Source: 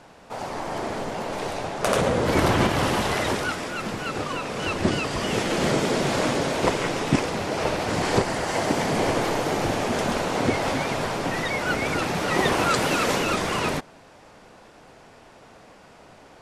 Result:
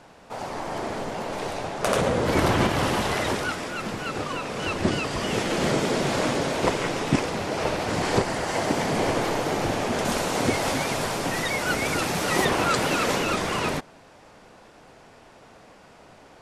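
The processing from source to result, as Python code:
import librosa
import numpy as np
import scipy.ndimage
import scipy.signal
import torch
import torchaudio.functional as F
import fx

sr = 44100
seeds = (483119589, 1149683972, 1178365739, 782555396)

y = fx.high_shelf(x, sr, hz=6000.0, db=11.0, at=(10.05, 12.45))
y = y * librosa.db_to_amplitude(-1.0)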